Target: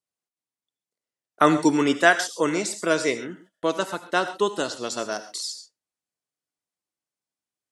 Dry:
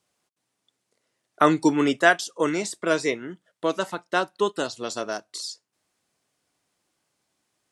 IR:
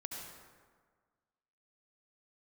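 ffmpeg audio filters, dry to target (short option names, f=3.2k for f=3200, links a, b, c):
-filter_complex "[0:a]agate=range=-20dB:threshold=-53dB:ratio=16:detection=peak,asplit=2[a][b];[1:a]atrim=start_sample=2205,afade=t=out:st=0.19:d=0.01,atrim=end_sample=8820,highshelf=f=4k:g=9.5[c];[b][c]afir=irnorm=-1:irlink=0,volume=-3.5dB[d];[a][d]amix=inputs=2:normalize=0,volume=-2.5dB"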